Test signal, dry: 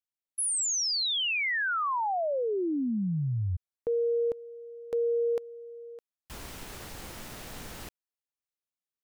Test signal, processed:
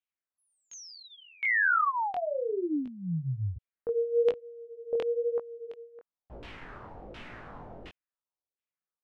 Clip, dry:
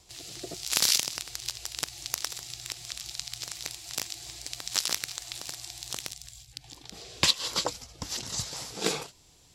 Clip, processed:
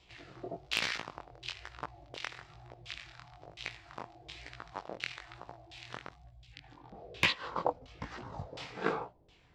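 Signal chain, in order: LFO low-pass saw down 1.4 Hz 490–3100 Hz; chorus 1.1 Hz, delay 16.5 ms, depth 7.9 ms; overload inside the chain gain 15.5 dB

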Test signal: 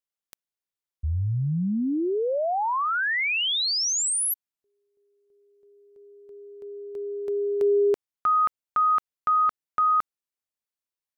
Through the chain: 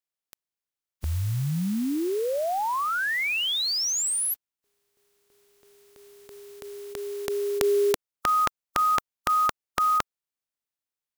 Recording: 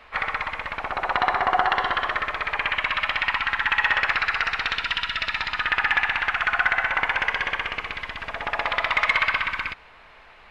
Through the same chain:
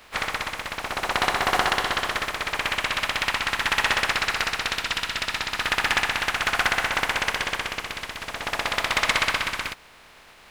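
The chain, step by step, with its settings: spectral contrast reduction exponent 0.46; trim -1 dB

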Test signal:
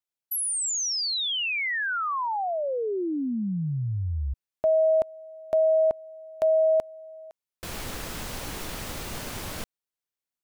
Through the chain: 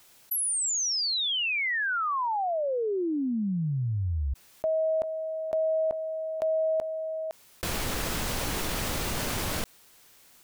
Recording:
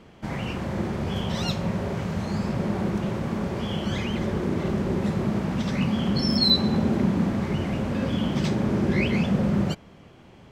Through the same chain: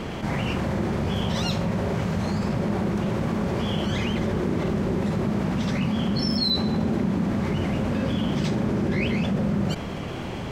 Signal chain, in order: level flattener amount 70%; trim -5.5 dB

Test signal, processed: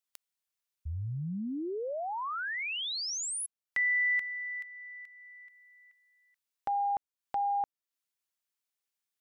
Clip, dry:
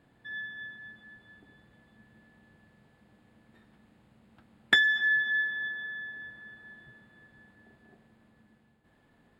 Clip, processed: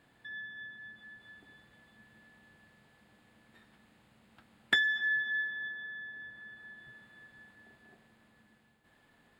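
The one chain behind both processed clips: tape noise reduction on one side only encoder only; trim -5 dB

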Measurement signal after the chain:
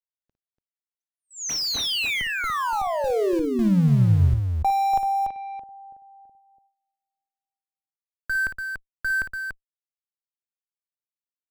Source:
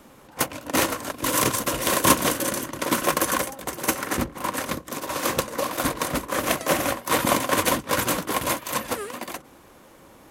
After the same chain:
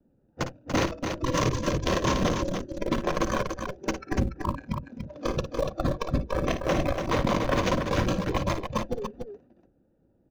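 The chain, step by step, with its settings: local Wiener filter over 41 samples; dynamic bell 270 Hz, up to -7 dB, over -42 dBFS, Q 3.7; steep low-pass 6.6 kHz 72 dB/octave; gate with hold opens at -49 dBFS; spectral noise reduction 17 dB; in parallel at -5 dB: Schmitt trigger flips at -24.5 dBFS; on the sum: bass shelf 350 Hz +8 dB; peak limiter -13.5 dBFS; on a send: loudspeakers at several distances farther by 19 m -10 dB, 99 m -6 dB; on the sum: trim -1.5 dB

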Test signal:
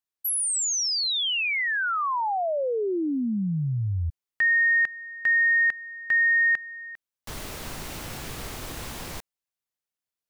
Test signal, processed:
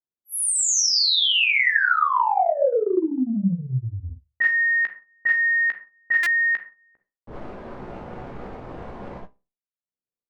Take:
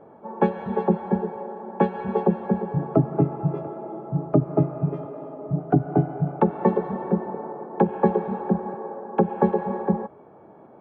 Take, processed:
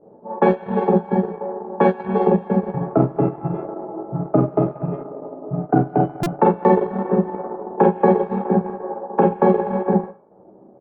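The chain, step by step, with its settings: bass shelf 220 Hz -8 dB; Schroeder reverb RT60 0.33 s, combs from 31 ms, DRR -1.5 dB; transient shaper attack +2 dB, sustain -10 dB; doubling 16 ms -9 dB; level-controlled noise filter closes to 410 Hz, open at -16.5 dBFS; buffer glitch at 6.23 s, samples 128, times 10; trim +2.5 dB

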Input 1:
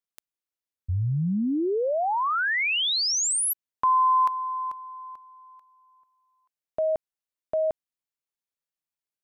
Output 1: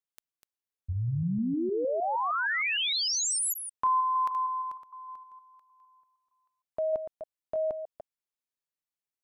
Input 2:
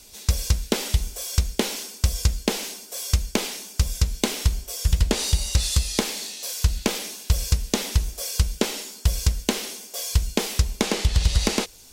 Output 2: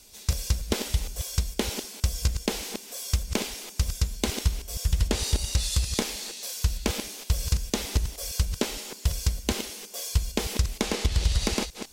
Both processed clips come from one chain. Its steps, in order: chunks repeated in reverse 154 ms, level -8.5 dB; trim -4.5 dB

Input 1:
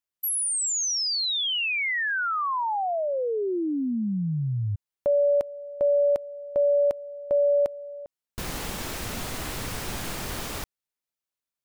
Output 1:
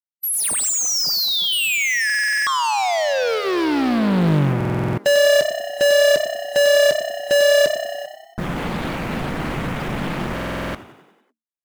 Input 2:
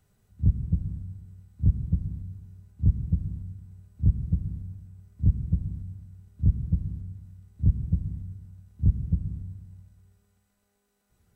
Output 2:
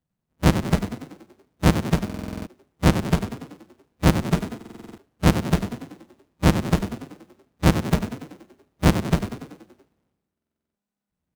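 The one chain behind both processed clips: square wave that keeps the level; spectral noise reduction 19 dB; peaking EQ 78 Hz +9 dB 0.31 oct; band-stop 410 Hz, Q 12; in parallel at -6 dB: bit crusher 6-bit; on the sum: resonant low shelf 120 Hz -6.5 dB, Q 3; frequency-shifting echo 95 ms, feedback 57%, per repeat +32 Hz, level -9.5 dB; buffer glitch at 2.05/4.56/10.33 s, samples 2048, times 8; loudspeaker Doppler distortion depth 0.7 ms

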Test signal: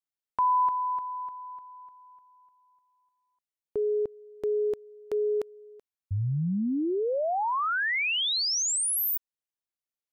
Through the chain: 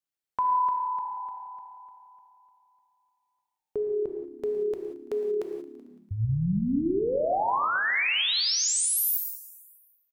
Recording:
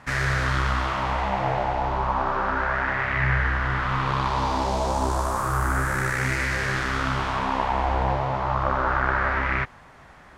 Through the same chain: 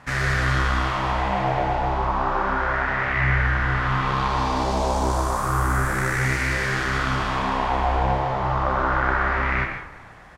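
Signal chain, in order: on a send: frequency-shifting echo 112 ms, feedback 65%, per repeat -35 Hz, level -16.5 dB; on the sum: gated-style reverb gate 210 ms flat, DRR 3.5 dB

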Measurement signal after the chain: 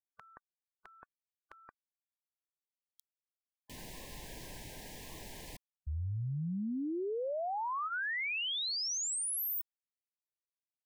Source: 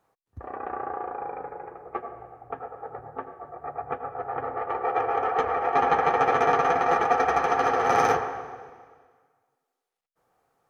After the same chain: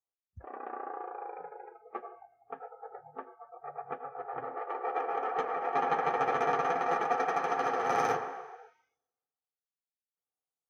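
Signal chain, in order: spectral noise reduction 25 dB; trim -7.5 dB

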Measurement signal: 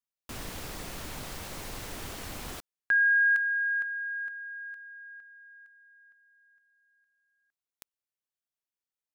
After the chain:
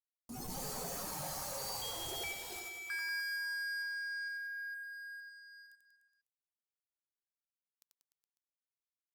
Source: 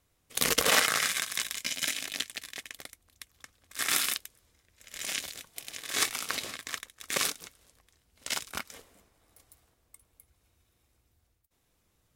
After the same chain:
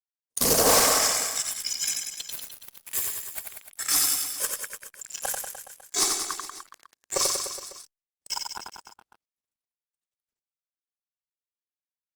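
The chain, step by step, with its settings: spectral noise reduction 23 dB; high-order bell 2.2 kHz -15 dB; Chebyshev shaper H 4 -18 dB, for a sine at -7 dBFS; ever faster or slower copies 185 ms, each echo +6 st, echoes 3, each echo -6 dB; waveshaping leveller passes 5; reverse bouncing-ball echo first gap 90 ms, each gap 1.1×, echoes 5; trim -7 dB; Opus 48 kbps 48 kHz

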